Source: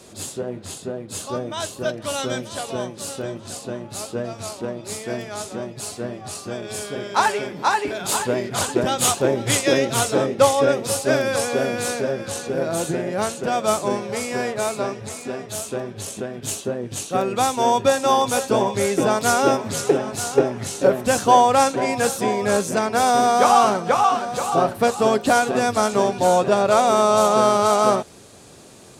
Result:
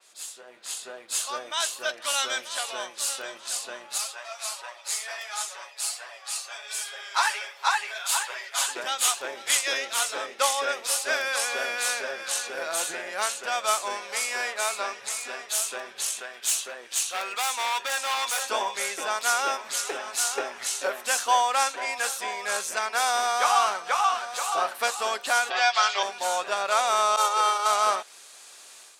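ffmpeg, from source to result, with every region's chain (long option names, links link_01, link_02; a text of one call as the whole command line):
ffmpeg -i in.wav -filter_complex "[0:a]asettb=1/sr,asplit=3[link_01][link_02][link_03];[link_01]atrim=end=3.984[link_04];[link_02]atrim=start=3.98:end=8.68,asetpts=PTS-STARTPTS,afade=type=in:duration=0.004:curve=qsin,afade=type=out:start_time=4.696:duration=0.004:curve=qsin,highpass=frequency=550:width=0.5412,highpass=frequency=550:width=1.3066,aecho=1:1:7.3:0.8,atrim=end_sample=207270,flanger=delay=1:depth=8.2:regen=-35:speed=1.4:shape=triangular[link_05];[link_03]atrim=start=8.676[link_06];[link_04][link_05]acrossfade=duration=0.004:curve1=hsin:curve2=qsin[link_07];[link_07][link_06]acrossfade=duration=0.004:curve1=qsin:curve2=hsin,asettb=1/sr,asplit=3[link_08][link_09][link_10];[link_08]atrim=end=16.064[link_11];[link_09]atrim=start=16.06:end=18.42,asetpts=PTS-STARTPTS,afade=type=in:duration=0.004:curve=qsin,afade=type=out:start_time=2.356:duration=0.004:curve=qsin,lowshelf=frequency=310:gain=-11.5,asoftclip=type=hard:threshold=-23.5dB[link_12];[link_10]atrim=start=18.416[link_13];[link_11][link_12]acrossfade=duration=0.004:curve1=hsin:curve2=qsin[link_14];[link_14][link_13]acrossfade=duration=0.004:curve1=qsin:curve2=hsin,asettb=1/sr,asplit=3[link_15][link_16][link_17];[link_15]atrim=end=25.504[link_18];[link_16]atrim=start=25.5:end=26.03,asetpts=PTS-STARTPTS,afade=type=in:duration=0.004:curve=qsin,afade=type=out:start_time=0.526:duration=0.004:curve=qsin,highpass=frequency=350:width=0.5412,highpass=frequency=350:width=1.3066,equalizer=frequency=460:width_type=q:width=4:gain=-5,equalizer=frequency=730:width_type=q:width=4:gain=5,equalizer=frequency=2000:width_type=q:width=4:gain=7,equalizer=frequency=3200:width_type=q:width=4:gain=10,equalizer=frequency=4700:width_type=q:width=4:gain=7,lowpass=frequency=6200:width=0.5412,lowpass=frequency=6200:width=1.3066,aecho=1:1:5.4:0.78,atrim=end_sample=23373[link_19];[link_17]atrim=start=26.026[link_20];[link_18][link_19]acrossfade=duration=0.004:curve1=hsin:curve2=qsin[link_21];[link_21][link_20]acrossfade=duration=0.004:curve1=qsin:curve2=hsin,asettb=1/sr,asplit=3[link_22][link_23][link_24];[link_22]atrim=end=27.164[link_25];[link_23]atrim=start=27.16:end=27.66,asetpts=PTS-STARTPTS,afade=type=in:duration=0.004:curve=qsin,afade=type=out:start_time=0.496:duration=0.004:curve=qsin,agate=range=-33dB:threshold=-13dB:ratio=3:release=100:detection=peak,aecho=1:1:2.2:0.88,atrim=end_sample=22050[link_26];[link_24]atrim=start=27.656[link_27];[link_25][link_26]acrossfade=duration=0.004:curve1=hsin:curve2=qsin[link_28];[link_28][link_27]acrossfade=duration=0.004:curve1=qsin:curve2=hsin,highpass=1300,dynaudnorm=framelen=450:gausssize=3:maxgain=11.5dB,adynamicequalizer=threshold=0.0282:dfrequency=4000:dqfactor=0.7:tfrequency=4000:tqfactor=0.7:attack=5:release=100:ratio=0.375:range=2:mode=cutabove:tftype=highshelf,volume=-6.5dB" out.wav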